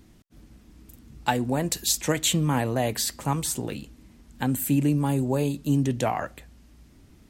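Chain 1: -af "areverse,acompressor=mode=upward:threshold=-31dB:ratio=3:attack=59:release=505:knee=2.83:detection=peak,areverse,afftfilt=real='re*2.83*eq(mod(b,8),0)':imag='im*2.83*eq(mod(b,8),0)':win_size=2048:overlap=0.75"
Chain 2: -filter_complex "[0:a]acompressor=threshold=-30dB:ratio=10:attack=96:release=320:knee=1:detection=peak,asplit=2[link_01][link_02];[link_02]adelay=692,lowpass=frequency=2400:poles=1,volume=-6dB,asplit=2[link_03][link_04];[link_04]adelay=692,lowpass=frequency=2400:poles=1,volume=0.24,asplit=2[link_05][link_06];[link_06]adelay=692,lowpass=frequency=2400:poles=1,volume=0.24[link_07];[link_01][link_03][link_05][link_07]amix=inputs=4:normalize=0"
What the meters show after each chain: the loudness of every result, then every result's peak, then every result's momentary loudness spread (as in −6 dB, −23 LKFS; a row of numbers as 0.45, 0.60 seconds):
−29.5, −30.5 LKFS; −9.5, −10.5 dBFS; 23, 10 LU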